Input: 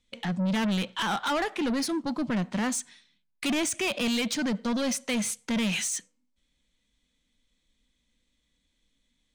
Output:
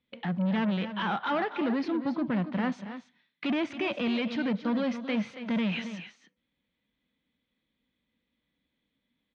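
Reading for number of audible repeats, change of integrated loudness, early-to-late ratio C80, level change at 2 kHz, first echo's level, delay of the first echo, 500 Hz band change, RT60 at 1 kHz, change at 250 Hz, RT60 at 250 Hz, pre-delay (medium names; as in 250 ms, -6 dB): 2, -2.0 dB, no reverb, -3.0 dB, -19.0 dB, 248 ms, -0.5 dB, no reverb, -0.5 dB, no reverb, no reverb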